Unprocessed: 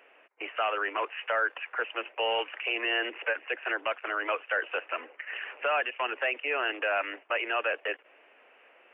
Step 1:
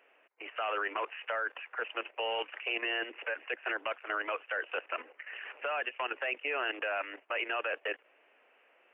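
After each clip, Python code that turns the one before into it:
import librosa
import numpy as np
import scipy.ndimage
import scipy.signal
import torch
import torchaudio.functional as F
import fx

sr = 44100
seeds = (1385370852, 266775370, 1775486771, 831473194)

y = fx.level_steps(x, sr, step_db=11)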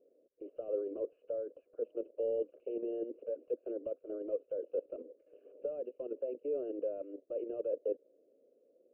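y = scipy.signal.sosfilt(scipy.signal.ellip(4, 1.0, 40, 540.0, 'lowpass', fs=sr, output='sos'), x)
y = y * 10.0 ** (6.0 / 20.0)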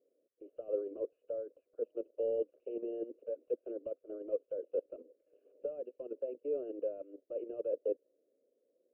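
y = fx.upward_expand(x, sr, threshold_db=-50.0, expansion=1.5)
y = y * 10.0 ** (1.5 / 20.0)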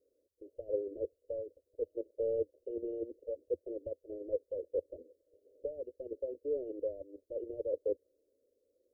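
y = scipy.signal.sosfilt(scipy.signal.cheby2(4, 50, [1000.0, 2200.0], 'bandstop', fs=sr, output='sos'), x)
y = fx.low_shelf_res(y, sr, hz=120.0, db=11.5, q=3.0)
y = y * 10.0 ** (2.0 / 20.0)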